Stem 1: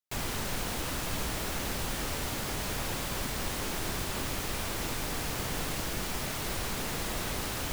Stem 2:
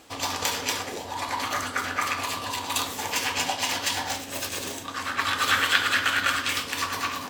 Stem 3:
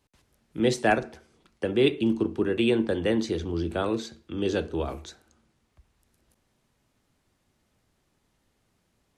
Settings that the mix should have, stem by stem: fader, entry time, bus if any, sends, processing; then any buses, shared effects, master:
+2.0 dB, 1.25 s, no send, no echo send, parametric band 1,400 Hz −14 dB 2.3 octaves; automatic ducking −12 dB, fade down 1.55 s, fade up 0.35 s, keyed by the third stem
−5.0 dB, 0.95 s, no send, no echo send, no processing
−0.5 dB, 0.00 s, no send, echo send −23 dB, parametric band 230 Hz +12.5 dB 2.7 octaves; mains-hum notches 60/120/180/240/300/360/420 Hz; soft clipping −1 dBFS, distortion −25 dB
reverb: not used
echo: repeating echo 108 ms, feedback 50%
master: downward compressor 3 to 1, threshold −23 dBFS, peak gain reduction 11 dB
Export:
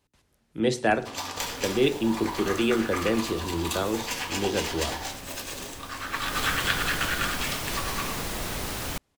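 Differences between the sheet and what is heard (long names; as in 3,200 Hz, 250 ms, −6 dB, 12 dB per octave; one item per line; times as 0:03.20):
stem 1: missing parametric band 1,400 Hz −14 dB 2.3 octaves
stem 3: missing parametric band 230 Hz +12.5 dB 2.7 octaves
master: missing downward compressor 3 to 1, threshold −23 dBFS, peak gain reduction 11 dB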